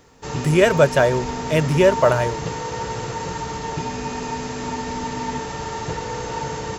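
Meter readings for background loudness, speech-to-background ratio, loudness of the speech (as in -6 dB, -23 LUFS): -27.5 LUFS, 9.0 dB, -18.5 LUFS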